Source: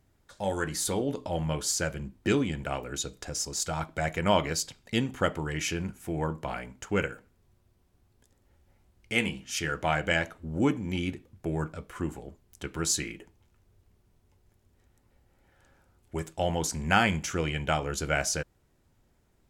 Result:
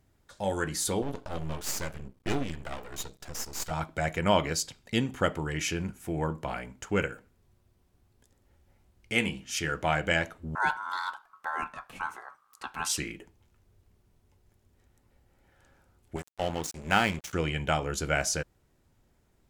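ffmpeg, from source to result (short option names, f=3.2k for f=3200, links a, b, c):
-filter_complex "[0:a]asettb=1/sr,asplit=3[a][b][c];[a]atrim=end=1.024[d];[b]atrim=start=1.02:end=3.71,asetpts=PTS-STARTPTS,afade=t=in:d=0.004:c=qsin,afade=t=out:st=2.686:d=0.004:c=qsin,aeval=exprs='max(val(0),0)':c=same[e];[c]atrim=start=3.706[f];[d][e]acrossfade=d=0.004:c1=hsin:c2=qsin[g];[g][f]acrossfade=d=0.004:c1=qsin:c2=hsin,asettb=1/sr,asplit=3[h][i][j];[h]atrim=end=10.554[k];[i]atrim=start=10.55:end=12.98,asetpts=PTS-STARTPTS,afade=t=in:d=0.004:c=qsin,afade=t=out:st=2.426:d=0.004:c=qsin,aeval=exprs='val(0)*sin(2*PI*1200*n/s)':c=same[l];[j]atrim=start=12.976[m];[k][l]acrossfade=d=0.004:c1=hsin:c2=qsin[n];[n][m]acrossfade=d=0.004:c1=qsin:c2=hsin,asettb=1/sr,asplit=3[o][p][q];[o]atrim=end=16.164[r];[p]atrim=start=16.16:end=17.33,asetpts=PTS-STARTPTS,afade=t=in:d=0.004:c=qsin,afade=t=out:st=1.166:d=0.004:c=qsin,aeval=exprs='sgn(val(0))*max(abs(val(0))-0.02,0)':c=same[s];[q]atrim=start=17.326[t];[r][s]acrossfade=d=0.004:c1=hsin:c2=qsin[u];[u][t]acrossfade=d=0.004:c1=qsin:c2=hsin"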